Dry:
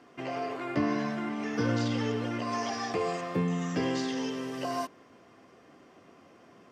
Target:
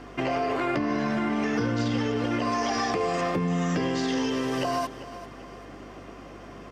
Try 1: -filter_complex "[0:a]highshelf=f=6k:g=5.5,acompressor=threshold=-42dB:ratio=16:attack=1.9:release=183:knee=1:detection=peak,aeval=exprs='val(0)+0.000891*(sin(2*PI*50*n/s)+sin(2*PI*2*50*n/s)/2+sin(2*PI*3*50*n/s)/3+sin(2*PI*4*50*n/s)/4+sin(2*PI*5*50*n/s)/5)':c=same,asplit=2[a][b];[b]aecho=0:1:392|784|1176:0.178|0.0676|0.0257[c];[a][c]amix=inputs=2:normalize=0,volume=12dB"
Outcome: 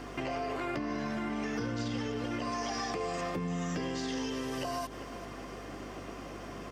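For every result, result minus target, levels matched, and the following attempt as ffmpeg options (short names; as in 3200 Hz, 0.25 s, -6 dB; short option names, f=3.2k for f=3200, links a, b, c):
compressor: peak gain reduction +8.5 dB; 8000 Hz band +5.0 dB
-filter_complex "[0:a]highshelf=f=6k:g=5.5,acompressor=threshold=-33dB:ratio=16:attack=1.9:release=183:knee=1:detection=peak,aeval=exprs='val(0)+0.000891*(sin(2*PI*50*n/s)+sin(2*PI*2*50*n/s)/2+sin(2*PI*3*50*n/s)/3+sin(2*PI*4*50*n/s)/4+sin(2*PI*5*50*n/s)/5)':c=same,asplit=2[a][b];[b]aecho=0:1:392|784|1176:0.178|0.0676|0.0257[c];[a][c]amix=inputs=2:normalize=0,volume=12dB"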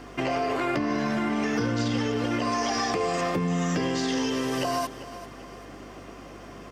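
8000 Hz band +4.0 dB
-filter_complex "[0:a]highshelf=f=6k:g=-3,acompressor=threshold=-33dB:ratio=16:attack=1.9:release=183:knee=1:detection=peak,aeval=exprs='val(0)+0.000891*(sin(2*PI*50*n/s)+sin(2*PI*2*50*n/s)/2+sin(2*PI*3*50*n/s)/3+sin(2*PI*4*50*n/s)/4+sin(2*PI*5*50*n/s)/5)':c=same,asplit=2[a][b];[b]aecho=0:1:392|784|1176:0.178|0.0676|0.0257[c];[a][c]amix=inputs=2:normalize=0,volume=12dB"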